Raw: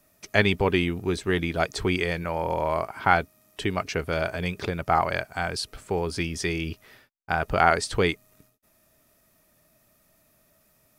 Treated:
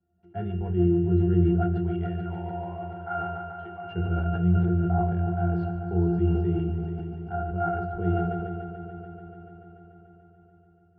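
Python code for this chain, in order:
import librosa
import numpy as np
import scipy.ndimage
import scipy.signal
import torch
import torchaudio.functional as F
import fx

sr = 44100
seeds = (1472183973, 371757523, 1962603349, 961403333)

y = fx.highpass(x, sr, hz=750.0, slope=12, at=(1.61, 3.83), fade=0.02)
y = fx.rider(y, sr, range_db=10, speed_s=0.5)
y = fx.spacing_loss(y, sr, db_at_10k=38)
y = fx.octave_resonator(y, sr, note='F', decay_s=0.25)
y = fx.echo_heads(y, sr, ms=145, heads='all three', feedback_pct=68, wet_db=-13.5)
y = fx.room_shoebox(y, sr, seeds[0], volume_m3=55.0, walls='mixed', distance_m=0.33)
y = fx.sustainer(y, sr, db_per_s=27.0)
y = y * librosa.db_to_amplitude(8.0)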